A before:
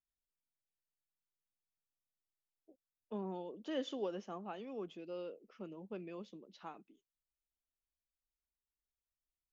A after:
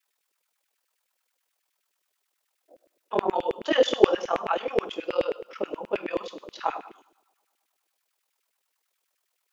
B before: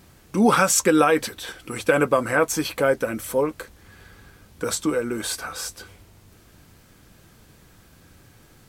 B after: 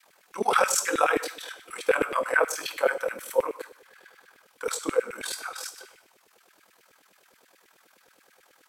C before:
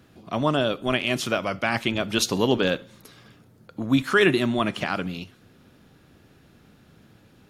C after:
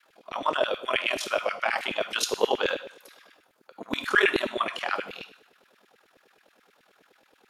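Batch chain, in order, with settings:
ring modulation 20 Hz
coupled-rooms reverb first 0.65 s, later 2.1 s, from −26 dB, DRR 7.5 dB
auto-filter high-pass saw down 9.4 Hz 360–2,400 Hz
loudness normalisation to −27 LKFS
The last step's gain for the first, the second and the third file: +19.5, −4.0, −2.0 decibels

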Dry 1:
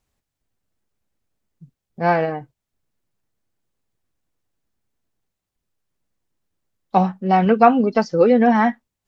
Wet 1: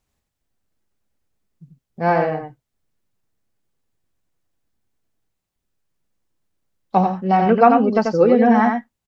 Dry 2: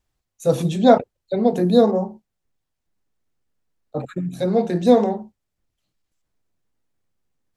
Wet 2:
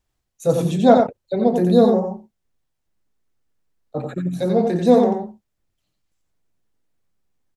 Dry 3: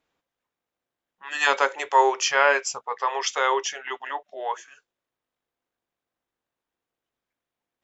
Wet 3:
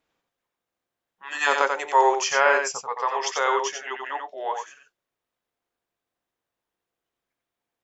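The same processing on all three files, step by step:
dynamic equaliser 3,400 Hz, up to −4 dB, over −35 dBFS, Q 0.81
single-tap delay 89 ms −5 dB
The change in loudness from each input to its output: +0.5, +1.0, 0.0 LU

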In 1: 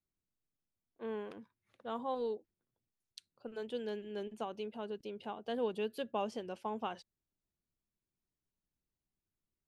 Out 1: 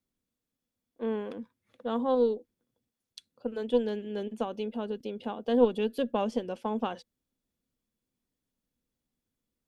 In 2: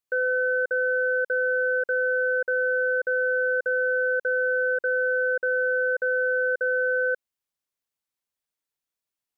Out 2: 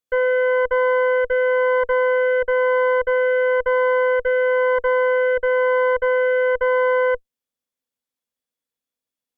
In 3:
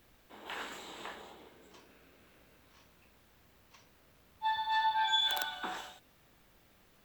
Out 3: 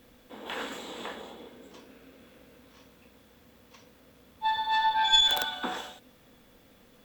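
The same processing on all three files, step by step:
hollow resonant body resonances 250/490/3,400 Hz, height 11 dB, ringing for 50 ms
harmonic generator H 2 −9 dB, 5 −42 dB, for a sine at −11 dBFS
normalise the peak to −9 dBFS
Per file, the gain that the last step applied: +3.5, −1.5, +4.0 decibels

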